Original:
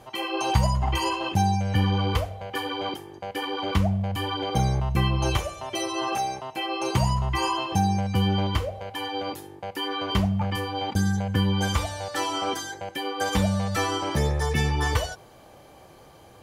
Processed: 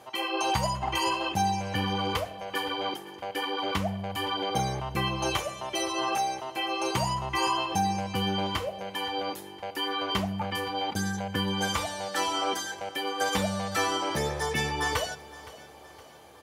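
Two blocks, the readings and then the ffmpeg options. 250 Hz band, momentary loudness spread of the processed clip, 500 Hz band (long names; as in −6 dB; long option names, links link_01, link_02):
−5.5 dB, 6 LU, −2.0 dB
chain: -filter_complex "[0:a]highpass=frequency=360:poles=1,asplit=2[link_01][link_02];[link_02]aecho=0:1:516|1032|1548|2064:0.119|0.0559|0.0263|0.0123[link_03];[link_01][link_03]amix=inputs=2:normalize=0"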